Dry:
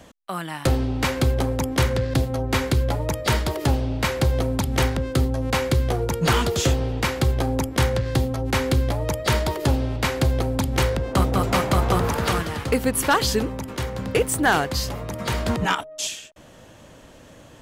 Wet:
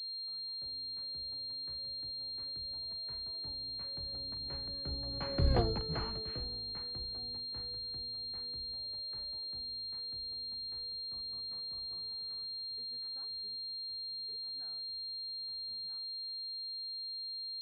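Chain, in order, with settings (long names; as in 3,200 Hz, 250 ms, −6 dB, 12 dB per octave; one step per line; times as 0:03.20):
sub-octave generator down 1 octave, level −4 dB
source passing by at 0:05.56, 20 m/s, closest 1.6 metres
switching amplifier with a slow clock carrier 4,200 Hz
level −5 dB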